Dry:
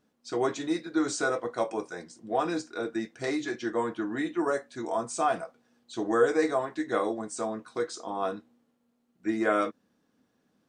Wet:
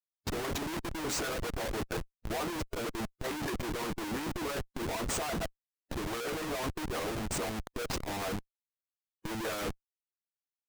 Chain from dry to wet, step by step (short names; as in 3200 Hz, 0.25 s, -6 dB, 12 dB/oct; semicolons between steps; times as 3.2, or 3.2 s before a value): Schmitt trigger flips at -37.5 dBFS; harmonic-percussive split harmonic -8 dB; core saturation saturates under 53 Hz